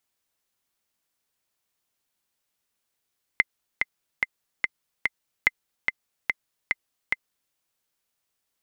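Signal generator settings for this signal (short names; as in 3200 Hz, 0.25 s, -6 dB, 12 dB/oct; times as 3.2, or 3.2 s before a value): metronome 145 bpm, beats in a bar 5, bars 2, 2070 Hz, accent 4.5 dB -4.5 dBFS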